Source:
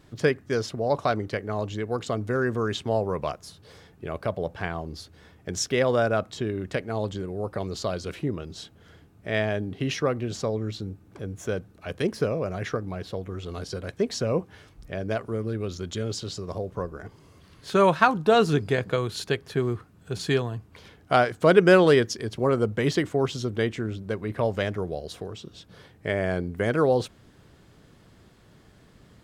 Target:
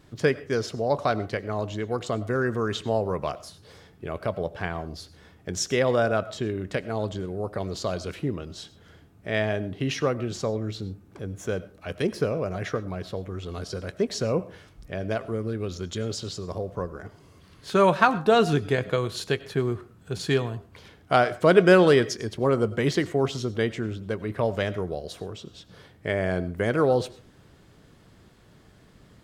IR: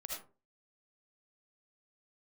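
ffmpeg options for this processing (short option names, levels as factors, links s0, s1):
-filter_complex "[0:a]asplit=2[s0][s1];[1:a]atrim=start_sample=2205,adelay=22[s2];[s1][s2]afir=irnorm=-1:irlink=0,volume=0.2[s3];[s0][s3]amix=inputs=2:normalize=0"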